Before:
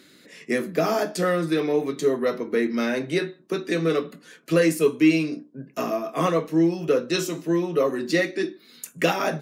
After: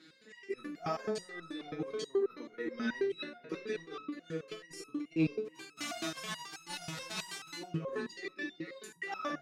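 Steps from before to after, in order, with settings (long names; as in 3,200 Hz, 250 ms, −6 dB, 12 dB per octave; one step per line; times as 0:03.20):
0:05.44–0:07.57: spectral envelope flattened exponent 0.1
high-pass filter 100 Hz 6 dB per octave
feedback echo with a low-pass in the loop 452 ms, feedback 42%, low-pass 2,000 Hz, level −17 dB
compressor whose output falls as the input rises −25 dBFS, ratio −0.5
low-pass filter 5,500 Hz 12 dB per octave
notch filter 610 Hz, Q 12
convolution reverb, pre-delay 27 ms, DRR 8.5 dB
step-sequenced resonator 9.3 Hz 160–1,300 Hz
level +3.5 dB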